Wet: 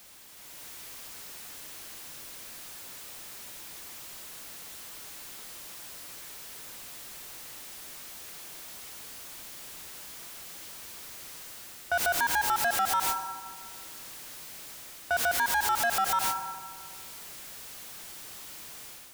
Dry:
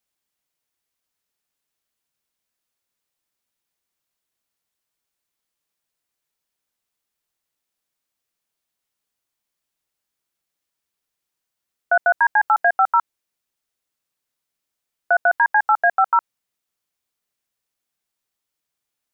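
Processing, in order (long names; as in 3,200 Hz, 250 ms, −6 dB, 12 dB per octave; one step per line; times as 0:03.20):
converter with a step at zero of −23 dBFS
noise gate −25 dBFS, range −19 dB
on a send at −16 dB: convolution reverb RT60 1.7 s, pre-delay 77 ms
on the sum: automatic gain control gain up to 8 dB
in parallel at −4 dB: soft clipping −12 dBFS, distortion −9 dB
on the sum: brickwall limiter −12 dBFS, peak gain reduction 11.5 dB
level −8 dB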